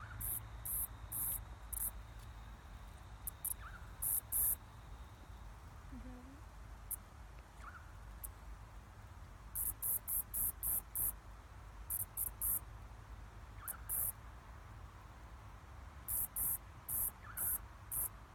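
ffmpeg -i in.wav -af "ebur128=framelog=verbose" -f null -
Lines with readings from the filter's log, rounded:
Integrated loudness:
  I:         -39.1 LUFS
  Threshold: -51.5 LUFS
Loudness range:
  LRA:        12.7 LU
  Threshold: -61.7 LUFS
  LRA low:   -51.8 LUFS
  LRA high:  -39.1 LUFS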